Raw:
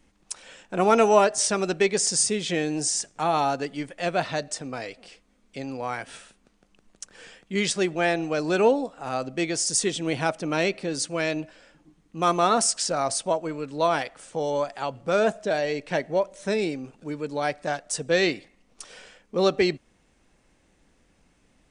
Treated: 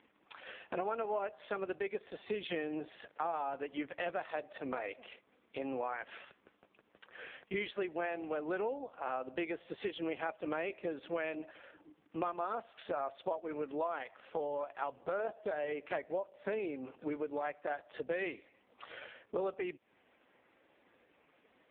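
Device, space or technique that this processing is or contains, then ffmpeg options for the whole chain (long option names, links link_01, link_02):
voicemail: -af "highpass=370,lowpass=3100,acompressor=threshold=-38dB:ratio=8,volume=4.5dB" -ar 8000 -c:a libopencore_amrnb -b:a 4750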